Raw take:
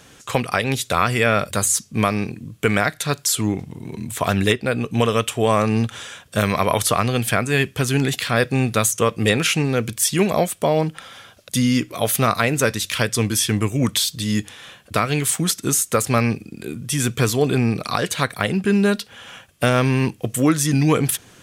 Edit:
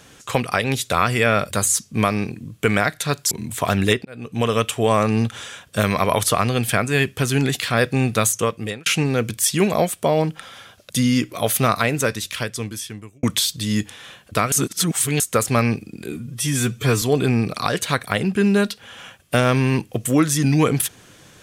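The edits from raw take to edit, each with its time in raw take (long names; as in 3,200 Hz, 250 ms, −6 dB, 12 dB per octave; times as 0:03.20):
0:03.31–0:03.90: remove
0:04.64–0:05.14: fade in
0:08.92–0:09.45: fade out
0:12.32–0:13.82: fade out
0:15.11–0:15.79: reverse
0:16.71–0:17.31: time-stretch 1.5×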